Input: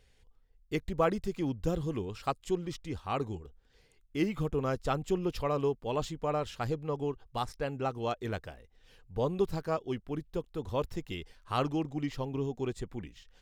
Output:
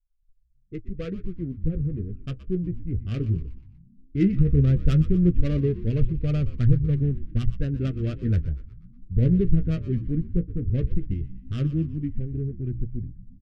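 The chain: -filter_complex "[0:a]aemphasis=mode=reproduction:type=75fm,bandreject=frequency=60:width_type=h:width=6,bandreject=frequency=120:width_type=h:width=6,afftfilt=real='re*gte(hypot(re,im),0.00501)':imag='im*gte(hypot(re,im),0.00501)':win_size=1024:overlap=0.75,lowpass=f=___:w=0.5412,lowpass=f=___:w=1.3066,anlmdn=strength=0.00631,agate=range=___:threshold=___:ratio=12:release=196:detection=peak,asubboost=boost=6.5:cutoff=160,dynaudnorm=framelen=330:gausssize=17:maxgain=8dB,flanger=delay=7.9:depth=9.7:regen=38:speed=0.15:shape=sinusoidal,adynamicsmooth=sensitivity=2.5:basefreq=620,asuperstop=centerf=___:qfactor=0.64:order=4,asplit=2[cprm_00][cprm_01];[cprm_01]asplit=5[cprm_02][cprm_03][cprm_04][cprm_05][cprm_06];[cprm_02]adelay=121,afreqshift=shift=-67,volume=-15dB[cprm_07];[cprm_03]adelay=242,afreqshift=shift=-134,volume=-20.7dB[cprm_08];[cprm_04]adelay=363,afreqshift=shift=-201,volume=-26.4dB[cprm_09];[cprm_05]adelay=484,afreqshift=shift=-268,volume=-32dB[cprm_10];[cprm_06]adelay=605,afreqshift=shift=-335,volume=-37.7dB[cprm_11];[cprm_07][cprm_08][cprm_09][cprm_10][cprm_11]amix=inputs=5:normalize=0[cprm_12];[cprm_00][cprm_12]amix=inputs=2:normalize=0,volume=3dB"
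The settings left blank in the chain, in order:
3600, 3600, -7dB, -56dB, 890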